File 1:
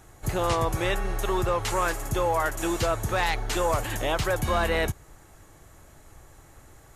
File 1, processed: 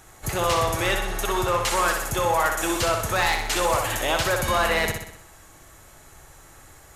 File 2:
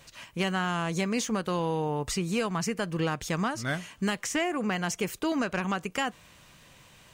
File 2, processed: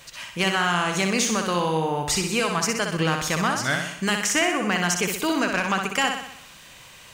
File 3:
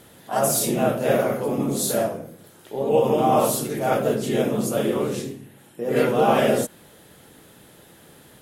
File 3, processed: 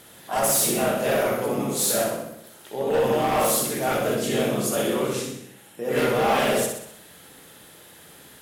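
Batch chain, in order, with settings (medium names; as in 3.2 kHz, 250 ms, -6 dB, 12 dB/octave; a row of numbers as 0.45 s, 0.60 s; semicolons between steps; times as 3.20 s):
tilt shelf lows -4 dB, about 740 Hz; hard clipper -18 dBFS; on a send: flutter echo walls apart 10.7 m, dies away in 0.69 s; on the sum: normalise loudness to -23 LUFS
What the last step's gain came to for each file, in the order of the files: +2.0 dB, +5.0 dB, -0.5 dB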